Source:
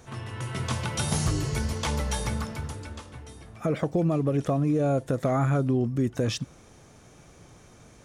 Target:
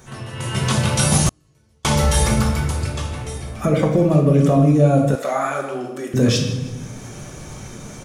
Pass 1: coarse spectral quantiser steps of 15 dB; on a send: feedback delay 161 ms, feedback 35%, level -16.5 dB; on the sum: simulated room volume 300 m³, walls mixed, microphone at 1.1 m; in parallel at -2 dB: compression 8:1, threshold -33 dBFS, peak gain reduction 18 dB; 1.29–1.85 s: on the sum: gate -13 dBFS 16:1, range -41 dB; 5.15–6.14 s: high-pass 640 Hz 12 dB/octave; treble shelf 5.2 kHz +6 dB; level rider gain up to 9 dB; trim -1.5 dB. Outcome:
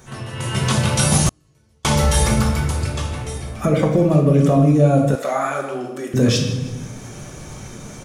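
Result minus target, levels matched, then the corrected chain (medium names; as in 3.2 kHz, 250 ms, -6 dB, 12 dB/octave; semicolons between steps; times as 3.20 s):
compression: peak gain reduction -5 dB
coarse spectral quantiser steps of 15 dB; on a send: feedback delay 161 ms, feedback 35%, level -16.5 dB; on the sum: simulated room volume 300 m³, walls mixed, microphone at 1.1 m; in parallel at -2 dB: compression 8:1, threshold -39 dBFS, peak gain reduction 23 dB; 1.29–1.85 s: on the sum: gate -13 dBFS 16:1, range -41 dB; 5.15–6.14 s: high-pass 640 Hz 12 dB/octave; treble shelf 5.2 kHz +6 dB; level rider gain up to 9 dB; trim -1.5 dB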